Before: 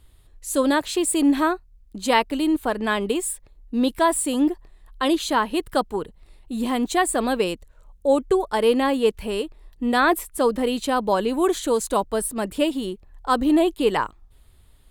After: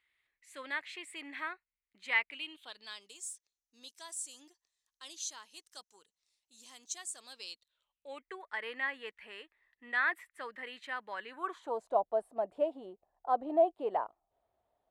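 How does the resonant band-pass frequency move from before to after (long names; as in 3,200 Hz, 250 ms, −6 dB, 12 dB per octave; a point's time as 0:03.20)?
resonant band-pass, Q 6.1
0:02.23 2,100 Hz
0:03.12 6,100 Hz
0:07.22 6,100 Hz
0:08.32 1,900 Hz
0:11.28 1,900 Hz
0:11.79 690 Hz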